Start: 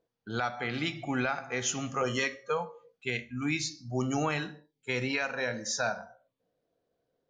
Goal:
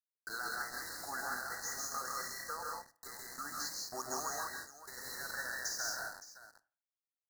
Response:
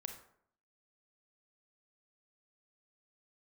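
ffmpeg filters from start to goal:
-filter_complex "[0:a]highpass=1400,alimiter=level_in=1.58:limit=0.0631:level=0:latency=1:release=50,volume=0.631,acompressor=threshold=0.00447:ratio=12,tremolo=f=15:d=0.3,acrusher=bits=8:mix=0:aa=0.000001,asuperstop=centerf=2800:order=20:qfactor=1.3,aecho=1:1:135|159|190|566:0.531|0.708|0.596|0.2,asplit=2[s0][s1];[1:a]atrim=start_sample=2205,asetrate=66150,aresample=44100[s2];[s1][s2]afir=irnorm=-1:irlink=0,volume=0.891[s3];[s0][s3]amix=inputs=2:normalize=0,volume=2.37"

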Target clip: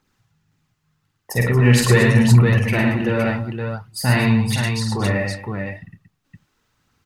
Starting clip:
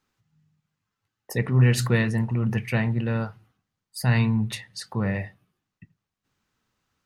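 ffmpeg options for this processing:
-af "aphaser=in_gain=1:out_gain=1:delay=3.8:decay=0.51:speed=0.87:type=triangular,aecho=1:1:49|107|136|229|516:0.631|0.631|0.15|0.237|0.596,volume=1.68"

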